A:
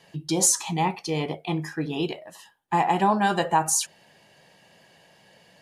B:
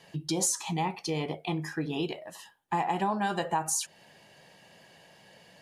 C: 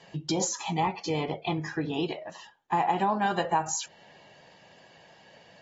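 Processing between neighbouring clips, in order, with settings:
compression 2:1, threshold -31 dBFS, peak gain reduction 8.5 dB
peaking EQ 780 Hz +3.5 dB 2 oct; AAC 24 kbps 48 kHz

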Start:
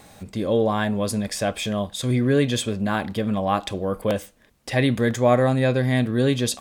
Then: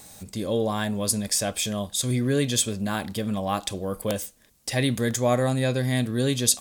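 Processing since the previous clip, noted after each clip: tone controls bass +2 dB, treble +14 dB; trim -5 dB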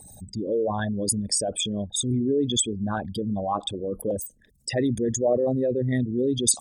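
resonances exaggerated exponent 3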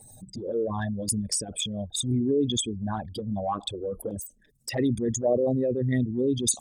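touch-sensitive flanger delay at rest 9.7 ms, full sweep at -19 dBFS

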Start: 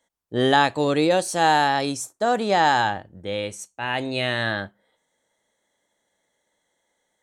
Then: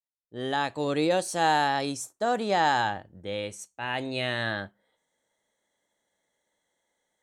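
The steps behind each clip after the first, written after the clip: fade-in on the opening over 1.06 s; trim -5 dB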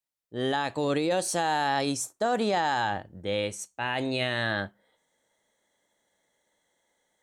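peak limiter -21.5 dBFS, peak gain reduction 9 dB; trim +4 dB

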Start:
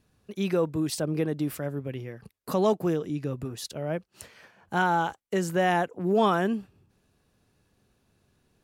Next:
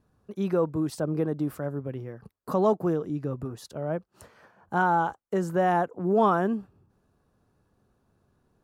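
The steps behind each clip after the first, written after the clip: resonant high shelf 1.7 kHz -8.5 dB, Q 1.5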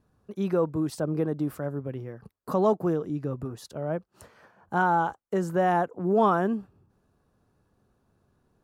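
no audible change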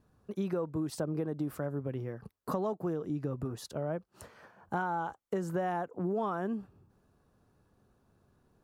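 compression 6:1, threshold -30 dBFS, peak gain reduction 12.5 dB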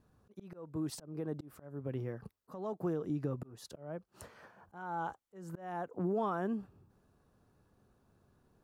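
slow attack 351 ms; trim -1 dB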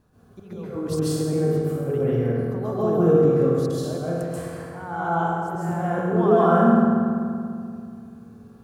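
reverberation RT60 2.2 s, pre-delay 129 ms, DRR -10 dB; trim +6 dB

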